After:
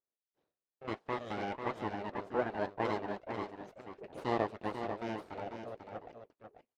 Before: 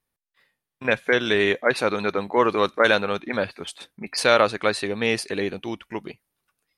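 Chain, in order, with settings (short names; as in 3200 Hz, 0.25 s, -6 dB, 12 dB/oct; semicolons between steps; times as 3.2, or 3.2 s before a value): flange 1.8 Hz, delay 2 ms, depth 4.5 ms, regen -61%; full-wave rectifier; band-pass 460 Hz, Q 1.4; on a send: echo 0.493 s -7.5 dB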